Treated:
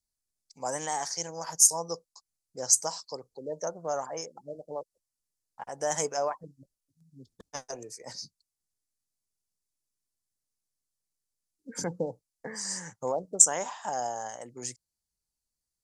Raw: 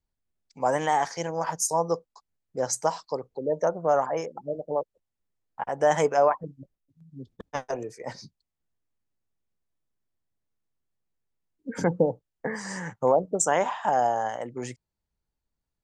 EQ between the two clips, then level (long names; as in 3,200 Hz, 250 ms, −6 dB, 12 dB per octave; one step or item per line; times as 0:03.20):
high-shelf EQ 4,900 Hz +8 dB
flat-topped bell 7,000 Hz +12 dB
−9.5 dB